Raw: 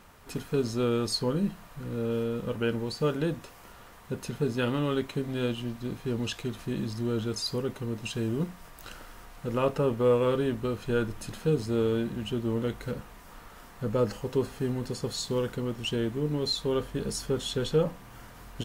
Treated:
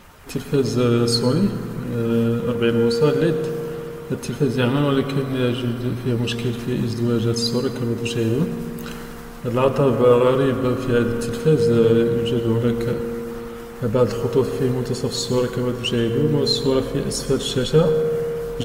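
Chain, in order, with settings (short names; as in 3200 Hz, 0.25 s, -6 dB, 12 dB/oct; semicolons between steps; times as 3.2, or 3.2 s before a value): bin magnitudes rounded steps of 15 dB; 4.41–6.46 notch 6800 Hz, Q 5.9; reverb RT60 3.3 s, pre-delay 95 ms, DRR 7 dB; gain +9 dB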